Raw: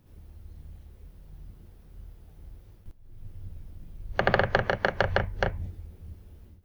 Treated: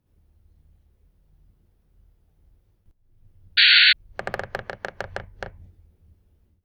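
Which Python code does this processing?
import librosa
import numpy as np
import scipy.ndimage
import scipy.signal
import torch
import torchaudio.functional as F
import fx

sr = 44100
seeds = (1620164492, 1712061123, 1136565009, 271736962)

y = fx.cheby_harmonics(x, sr, harmonics=(7,), levels_db=(-23,), full_scale_db=-4.5)
y = fx.spec_paint(y, sr, seeds[0], shape='noise', start_s=3.57, length_s=0.36, low_hz=1400.0, high_hz=4600.0, level_db=-8.0)
y = y * librosa.db_to_amplitude(-6.0)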